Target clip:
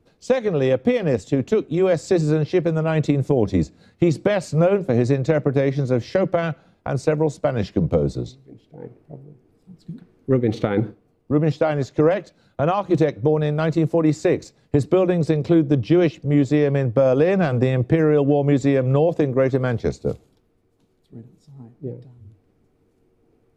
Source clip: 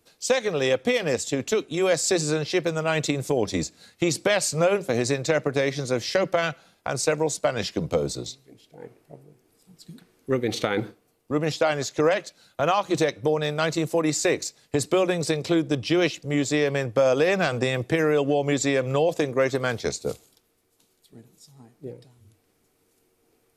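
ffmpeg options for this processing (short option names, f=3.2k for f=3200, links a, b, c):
-af "lowpass=f=1.5k:p=1,lowshelf=f=360:g=11.5"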